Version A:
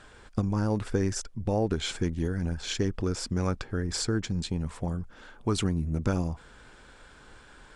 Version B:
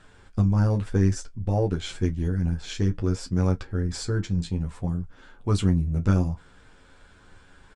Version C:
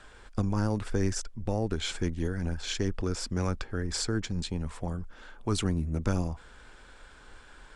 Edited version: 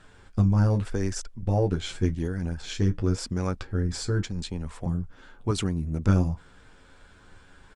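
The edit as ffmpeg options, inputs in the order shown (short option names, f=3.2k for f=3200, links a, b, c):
-filter_complex "[2:a]asplit=2[a][b];[0:a]asplit=3[c][d][e];[1:a]asplit=6[f][g][h][i][j][k];[f]atrim=end=0.852[l];[a]atrim=start=0.848:end=1.432[m];[g]atrim=start=1.428:end=2.152[n];[c]atrim=start=2.148:end=2.622[o];[h]atrim=start=2.618:end=3.182[p];[d]atrim=start=3.178:end=3.612[q];[i]atrim=start=3.608:end=4.232[r];[b]atrim=start=4.228:end=4.862[s];[j]atrim=start=4.858:end=5.512[t];[e]atrim=start=5.508:end=6.072[u];[k]atrim=start=6.068[v];[l][m]acrossfade=d=0.004:c1=hsin:c2=hsin[w];[w][n]acrossfade=d=0.004:c1=hsin:c2=hsin[x];[x][o]acrossfade=d=0.004:c1=hsin:c2=hsin[y];[y][p]acrossfade=d=0.004:c1=hsin:c2=hsin[z];[z][q]acrossfade=d=0.004:c1=hsin:c2=hsin[aa];[aa][r]acrossfade=d=0.004:c1=hsin:c2=hsin[ab];[ab][s]acrossfade=d=0.004:c1=hsin:c2=hsin[ac];[ac][t]acrossfade=d=0.004:c1=hsin:c2=hsin[ad];[ad][u]acrossfade=d=0.004:c1=hsin:c2=hsin[ae];[ae][v]acrossfade=d=0.004:c1=hsin:c2=hsin"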